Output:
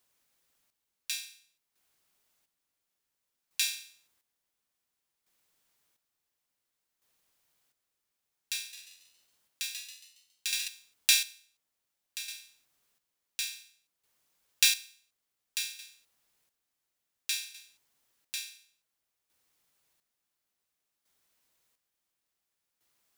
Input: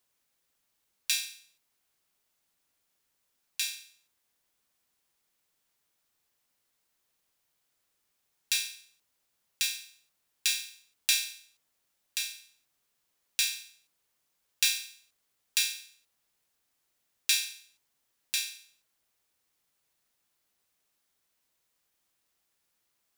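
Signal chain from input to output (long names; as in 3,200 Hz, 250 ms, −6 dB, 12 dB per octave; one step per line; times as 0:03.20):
square-wave tremolo 0.57 Hz, depth 65%, duty 40%
0:08.59–0:10.68: echo with shifted repeats 138 ms, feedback 41%, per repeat +90 Hz, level −6.5 dB
level +2.5 dB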